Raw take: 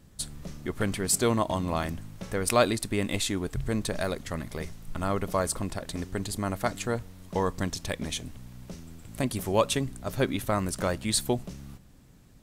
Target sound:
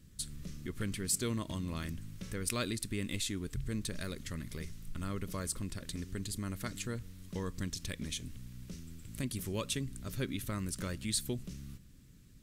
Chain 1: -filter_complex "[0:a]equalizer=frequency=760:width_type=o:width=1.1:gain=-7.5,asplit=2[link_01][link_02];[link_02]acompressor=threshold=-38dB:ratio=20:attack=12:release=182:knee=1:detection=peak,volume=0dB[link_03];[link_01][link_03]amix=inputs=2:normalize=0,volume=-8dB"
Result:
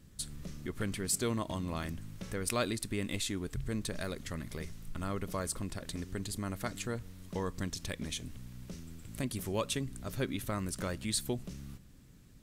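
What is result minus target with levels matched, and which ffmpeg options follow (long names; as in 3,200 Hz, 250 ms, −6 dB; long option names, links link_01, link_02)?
1,000 Hz band +4.5 dB
-filter_complex "[0:a]equalizer=frequency=760:width_type=o:width=1.1:gain=-19,asplit=2[link_01][link_02];[link_02]acompressor=threshold=-38dB:ratio=20:attack=12:release=182:knee=1:detection=peak,volume=0dB[link_03];[link_01][link_03]amix=inputs=2:normalize=0,volume=-8dB"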